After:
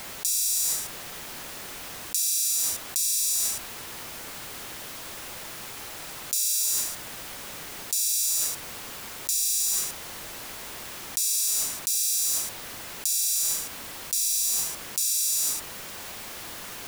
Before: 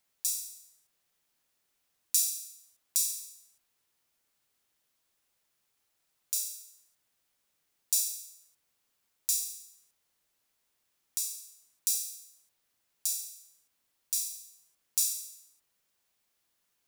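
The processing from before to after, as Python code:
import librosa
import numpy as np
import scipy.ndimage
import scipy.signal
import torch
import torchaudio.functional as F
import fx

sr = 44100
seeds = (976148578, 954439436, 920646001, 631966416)

y = fx.high_shelf(x, sr, hz=3000.0, db=-7.5)
y = fx.env_flatten(y, sr, amount_pct=100)
y = F.gain(torch.from_numpy(y), 4.0).numpy()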